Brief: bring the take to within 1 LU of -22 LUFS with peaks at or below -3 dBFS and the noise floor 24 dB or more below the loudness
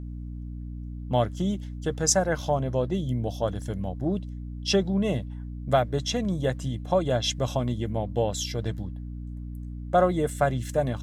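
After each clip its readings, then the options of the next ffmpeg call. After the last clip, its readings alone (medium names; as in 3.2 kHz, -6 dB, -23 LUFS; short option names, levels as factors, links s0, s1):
hum 60 Hz; highest harmonic 300 Hz; hum level -33 dBFS; loudness -27.0 LUFS; peak level -8.5 dBFS; loudness target -22.0 LUFS
-> -af "bandreject=f=60:t=h:w=4,bandreject=f=120:t=h:w=4,bandreject=f=180:t=h:w=4,bandreject=f=240:t=h:w=4,bandreject=f=300:t=h:w=4"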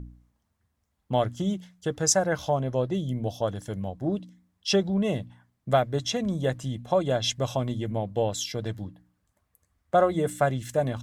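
hum not found; loudness -27.5 LUFS; peak level -9.0 dBFS; loudness target -22.0 LUFS
-> -af "volume=1.88"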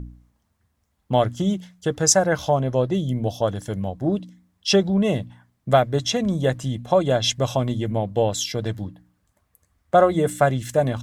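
loudness -22.0 LUFS; peak level -3.5 dBFS; noise floor -71 dBFS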